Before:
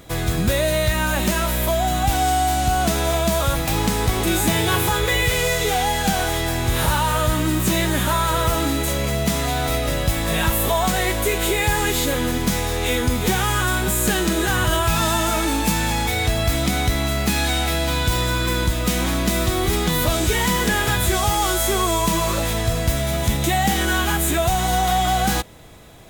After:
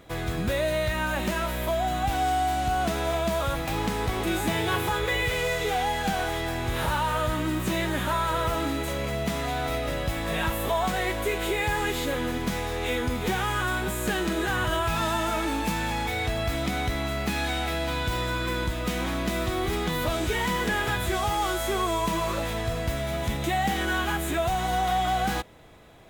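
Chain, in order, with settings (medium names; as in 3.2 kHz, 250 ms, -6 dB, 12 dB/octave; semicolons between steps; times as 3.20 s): tone controls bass -4 dB, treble -9 dB; trim -5 dB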